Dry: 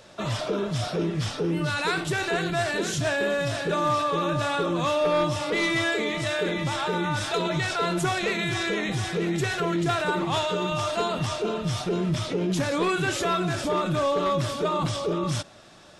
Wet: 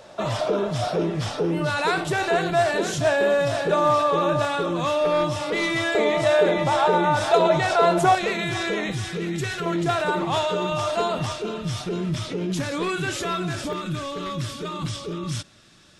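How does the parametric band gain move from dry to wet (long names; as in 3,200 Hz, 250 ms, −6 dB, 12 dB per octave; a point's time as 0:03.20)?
parametric band 700 Hz 1.4 octaves
+8 dB
from 0:04.45 +2 dB
from 0:05.95 +13.5 dB
from 0:08.15 +4 dB
from 0:08.91 −6 dB
from 0:09.66 +4 dB
from 0:11.32 −4 dB
from 0:13.73 −12.5 dB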